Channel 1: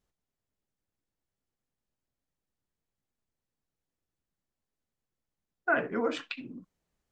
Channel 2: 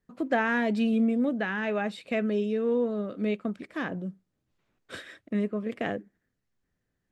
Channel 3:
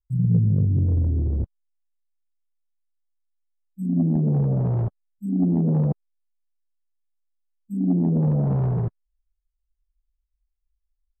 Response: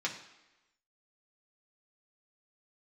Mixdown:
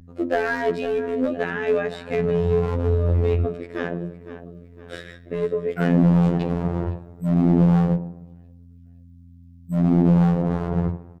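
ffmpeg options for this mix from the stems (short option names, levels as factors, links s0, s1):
-filter_complex "[0:a]highshelf=f=3400:g=7.5,adelay=100,volume=0.708,asplit=2[s0][s1];[s1]volume=0.0794[s2];[1:a]equalizer=f=430:w=0.64:g=10.5,volume=1.41,asplit=3[s3][s4][s5];[s4]volume=0.282[s6];[s5]volume=0.178[s7];[2:a]dynaudnorm=f=250:g=13:m=6.68,adelay=2000,volume=0.75,asplit=2[s8][s9];[s9]volume=0.668[s10];[s3][s8]amix=inputs=2:normalize=0,equalizer=f=100:t=o:w=0.67:g=6,equalizer=f=250:t=o:w=0.67:g=-8,equalizer=f=1000:t=o:w=0.67:g=-11,alimiter=limit=0.237:level=0:latency=1:release=19,volume=1[s11];[3:a]atrim=start_sample=2205[s12];[s6][s10]amix=inputs=2:normalize=0[s13];[s13][s12]afir=irnorm=-1:irlink=0[s14];[s2][s7]amix=inputs=2:normalize=0,aecho=0:1:510|1020|1530|2040|2550|3060:1|0.45|0.202|0.0911|0.041|0.0185[s15];[s0][s11][s14][s15]amix=inputs=4:normalize=0,volume=4.22,asoftclip=hard,volume=0.237,aeval=exprs='val(0)+0.0112*(sin(2*PI*50*n/s)+sin(2*PI*2*50*n/s)/2+sin(2*PI*3*50*n/s)/3+sin(2*PI*4*50*n/s)/4+sin(2*PI*5*50*n/s)/5)':c=same,afftfilt=real='hypot(re,im)*cos(PI*b)':imag='0':win_size=2048:overlap=0.75"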